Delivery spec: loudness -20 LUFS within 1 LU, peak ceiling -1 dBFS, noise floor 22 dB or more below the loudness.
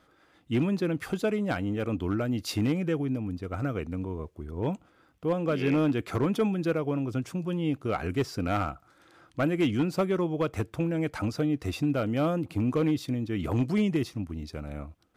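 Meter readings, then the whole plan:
clipped 0.7%; flat tops at -19.0 dBFS; loudness -29.5 LUFS; peak -19.0 dBFS; loudness target -20.0 LUFS
-> clip repair -19 dBFS; gain +9.5 dB

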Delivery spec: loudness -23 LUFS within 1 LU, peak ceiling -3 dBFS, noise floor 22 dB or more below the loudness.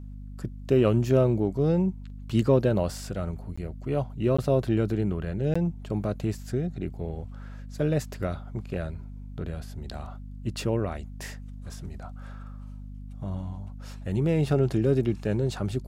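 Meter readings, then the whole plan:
dropouts 3; longest dropout 15 ms; hum 50 Hz; harmonics up to 250 Hz; hum level -37 dBFS; loudness -27.5 LUFS; peak -10.0 dBFS; loudness target -23.0 LUFS
-> interpolate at 3.56/4.37/5.54, 15 ms; notches 50/100/150/200/250 Hz; gain +4.5 dB

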